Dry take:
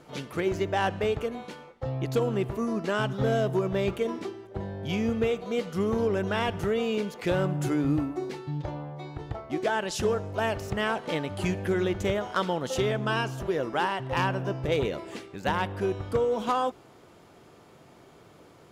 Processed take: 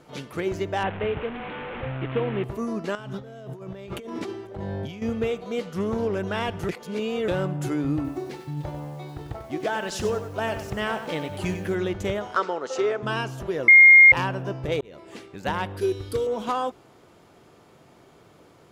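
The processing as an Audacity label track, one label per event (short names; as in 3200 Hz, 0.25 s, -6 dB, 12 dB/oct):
0.830000	2.440000	delta modulation 16 kbps, step -28.5 dBFS
2.950000	5.020000	negative-ratio compressor -36 dBFS
5.620000	6.190000	Doppler distortion depth 0.14 ms
6.690000	7.280000	reverse
7.950000	11.750000	lo-fi delay 95 ms, feedback 35%, word length 8-bit, level -9 dB
12.360000	13.030000	speaker cabinet 390–7300 Hz, peaks and dips at 410 Hz +8 dB, 1300 Hz +7 dB, 3300 Hz -9 dB
13.680000	14.120000	bleep 2130 Hz -7.5 dBFS
14.810000	15.250000	fade in
15.770000	16.270000	EQ curve 110 Hz 0 dB, 190 Hz -10 dB, 290 Hz +1 dB, 410 Hz +5 dB, 630 Hz -11 dB, 1300 Hz -5 dB, 2800 Hz +2 dB, 4200 Hz +11 dB, 7000 Hz +5 dB, 10000 Hz +12 dB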